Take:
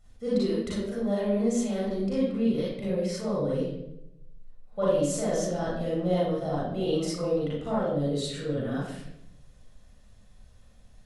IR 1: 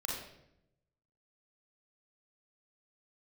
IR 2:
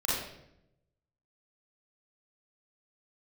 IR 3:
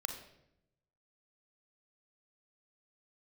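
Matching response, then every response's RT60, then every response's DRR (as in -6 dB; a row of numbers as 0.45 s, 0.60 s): 2; 0.80 s, 0.80 s, 0.80 s; -3.0 dB, -8.0 dB, 5.0 dB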